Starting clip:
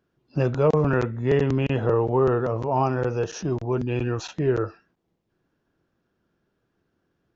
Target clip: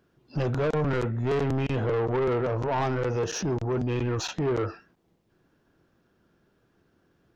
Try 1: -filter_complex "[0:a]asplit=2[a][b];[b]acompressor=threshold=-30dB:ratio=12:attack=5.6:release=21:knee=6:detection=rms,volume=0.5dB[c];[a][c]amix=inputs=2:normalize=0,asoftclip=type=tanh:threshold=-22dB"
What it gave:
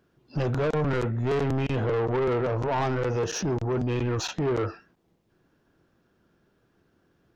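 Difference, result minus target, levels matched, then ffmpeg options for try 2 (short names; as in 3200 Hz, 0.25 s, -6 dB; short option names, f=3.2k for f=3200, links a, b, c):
compressor: peak gain reduction -5.5 dB
-filter_complex "[0:a]asplit=2[a][b];[b]acompressor=threshold=-36dB:ratio=12:attack=5.6:release=21:knee=6:detection=rms,volume=0.5dB[c];[a][c]amix=inputs=2:normalize=0,asoftclip=type=tanh:threshold=-22dB"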